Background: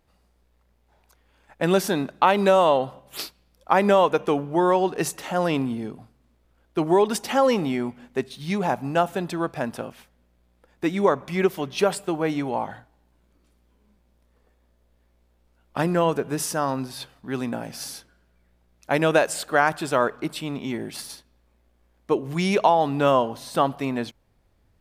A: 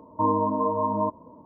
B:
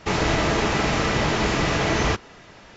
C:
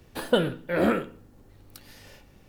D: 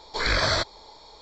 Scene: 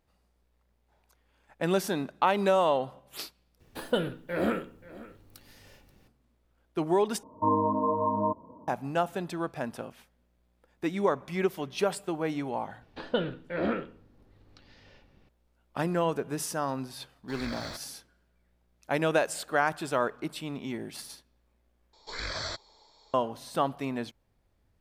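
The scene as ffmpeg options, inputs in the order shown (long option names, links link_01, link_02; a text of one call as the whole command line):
ffmpeg -i bed.wav -i cue0.wav -i cue1.wav -i cue2.wav -i cue3.wav -filter_complex "[3:a]asplit=2[link_01][link_02];[4:a]asplit=2[link_03][link_04];[0:a]volume=-6.5dB[link_05];[link_01]aecho=1:1:532:0.119[link_06];[link_02]lowpass=frequency=4900:width=0.5412,lowpass=frequency=4900:width=1.3066[link_07];[link_03]aeval=exprs='sgn(val(0))*max(abs(val(0))-0.0106,0)':channel_layout=same[link_08];[link_04]highshelf=frequency=6600:gain=10[link_09];[link_05]asplit=4[link_10][link_11][link_12][link_13];[link_10]atrim=end=3.604[link_14];[link_06]atrim=end=2.48,asetpts=PTS-STARTPTS,volume=-5.5dB[link_15];[link_11]atrim=start=6.076:end=7.234[link_16];[1:a]atrim=end=1.45,asetpts=PTS-STARTPTS,volume=-2.5dB[link_17];[link_12]atrim=start=8.676:end=21.934[link_18];[link_09]atrim=end=1.21,asetpts=PTS-STARTPTS,volume=-13.5dB[link_19];[link_13]atrim=start=23.136[link_20];[link_07]atrim=end=2.48,asetpts=PTS-STARTPTS,volume=-6.5dB,afade=type=in:duration=0.004:curve=hsin,afade=type=out:start_time=2.476:duration=0.004:curve=hsin,adelay=12810[link_21];[link_08]atrim=end=1.21,asetpts=PTS-STARTPTS,volume=-16dB,afade=type=in:duration=0.004:curve=hsin,afade=type=out:start_time=1.206:duration=0.004:curve=hsin,adelay=17140[link_22];[link_14][link_15]acrossfade=duration=0.004:curve1=hsin:curve2=hsin[link_23];[link_23][link_16]acrossfade=duration=0.004:curve1=hsin:curve2=hsin[link_24];[link_24][link_17]acrossfade=duration=0.004:curve1=hsin:curve2=hsin[link_25];[link_25][link_18]acrossfade=duration=0.004:curve1=hsin:curve2=hsin[link_26];[link_26][link_19]acrossfade=duration=0.004:curve1=hsin:curve2=hsin[link_27];[link_27][link_20]acrossfade=duration=0.004:curve1=hsin:curve2=hsin[link_28];[link_28][link_21][link_22]amix=inputs=3:normalize=0" out.wav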